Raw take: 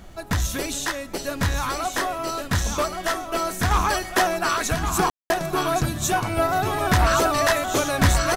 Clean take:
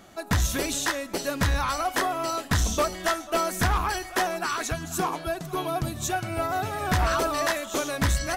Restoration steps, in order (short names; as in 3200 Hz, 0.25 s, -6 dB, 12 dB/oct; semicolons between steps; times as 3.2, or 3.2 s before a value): room tone fill 5.1–5.3; denoiser 6 dB, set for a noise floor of -33 dBFS; inverse comb 1.123 s -6.5 dB; gain correction -5 dB, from 3.71